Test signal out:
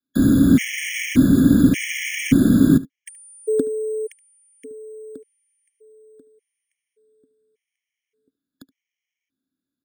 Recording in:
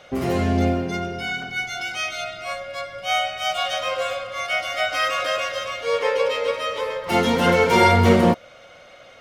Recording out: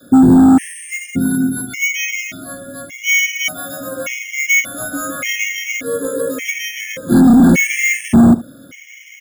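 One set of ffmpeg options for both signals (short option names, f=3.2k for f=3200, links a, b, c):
-filter_complex "[0:a]asplit=3[a][b][c];[a]bandpass=f=270:t=q:w=8,volume=0dB[d];[b]bandpass=f=2.29k:t=q:w=8,volume=-6dB[e];[c]bandpass=f=3.01k:t=q:w=8,volume=-9dB[f];[d][e][f]amix=inputs=3:normalize=0,bandreject=f=440:w=12,adynamicequalizer=threshold=0.00447:dfrequency=140:dqfactor=0.89:tfrequency=140:tqfactor=0.89:attack=5:release=100:ratio=0.375:range=2.5:mode=boostabove:tftype=bell,acrossover=split=360|3000[g][h][i];[i]acompressor=threshold=-57dB:ratio=6[j];[g][h][j]amix=inputs=3:normalize=0,volume=31.5dB,asoftclip=hard,volume=-31.5dB,bass=f=250:g=9,treble=f=4k:g=-15,acrusher=samples=5:mix=1:aa=0.000001,asplit=2[k][l];[l]aecho=0:1:73:0.1[m];[k][m]amix=inputs=2:normalize=0,alimiter=level_in=25.5dB:limit=-1dB:release=50:level=0:latency=1,afftfilt=real='re*gt(sin(2*PI*0.86*pts/sr)*(1-2*mod(floor(b*sr/1024/1700),2)),0)':imag='im*gt(sin(2*PI*0.86*pts/sr)*(1-2*mod(floor(b*sr/1024/1700),2)),0)':win_size=1024:overlap=0.75,volume=-1dB"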